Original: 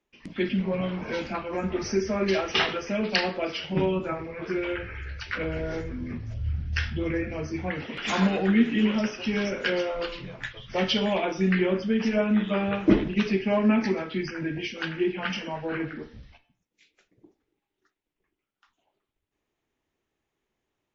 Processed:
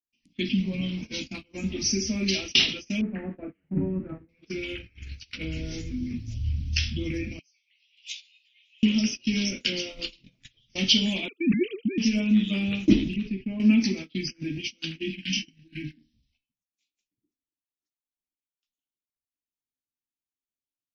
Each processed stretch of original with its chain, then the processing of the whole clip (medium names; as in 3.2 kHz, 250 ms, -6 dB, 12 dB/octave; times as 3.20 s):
3.01–4.29 s: zero-crossing glitches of -20.5 dBFS + steep low-pass 1.7 kHz 48 dB/octave
7.39–8.83 s: steep high-pass 2.4 kHz + distance through air 110 m + doubling 15 ms -2 dB
11.28–11.98 s: formants replaced by sine waves + brick-wall FIR band-stop 480–1100 Hz
13.16–13.60 s: low-pass 1.8 kHz + bass shelf 86 Hz +11 dB + compression 2.5:1, threshold -30 dBFS
14.98–16.14 s: brick-wall FIR band-stop 360–1500 Hz + bass shelf 66 Hz +2.5 dB + doubling 26 ms -7.5 dB
whole clip: tone controls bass +8 dB, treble +11 dB; gate -28 dBFS, range -25 dB; FFT filter 170 Hz 0 dB, 270 Hz +9 dB, 400 Hz -4 dB, 980 Hz -12 dB, 1.6 kHz -10 dB, 2.5 kHz +10 dB; trim -7 dB